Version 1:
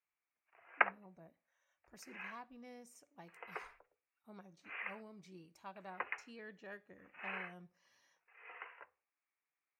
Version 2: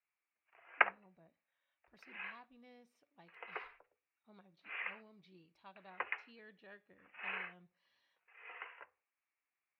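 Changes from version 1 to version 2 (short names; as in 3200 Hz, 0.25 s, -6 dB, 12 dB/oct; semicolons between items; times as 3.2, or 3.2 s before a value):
speech -7.0 dB; master: add resonant high shelf 5200 Hz -11.5 dB, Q 3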